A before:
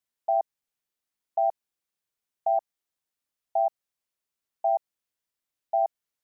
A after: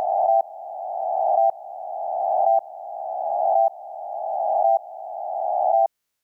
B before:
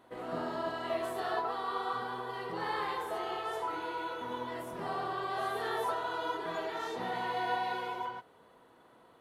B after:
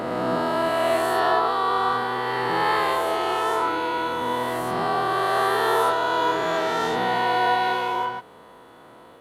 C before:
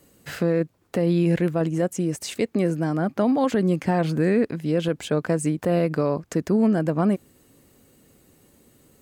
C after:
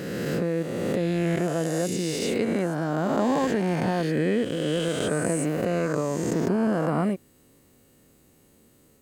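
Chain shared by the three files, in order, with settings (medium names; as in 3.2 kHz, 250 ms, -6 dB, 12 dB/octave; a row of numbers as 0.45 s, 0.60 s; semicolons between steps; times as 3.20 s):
reverse spectral sustain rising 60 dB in 2.49 s; peak normalisation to -9 dBFS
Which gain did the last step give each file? +5.5 dB, +9.5 dB, -5.5 dB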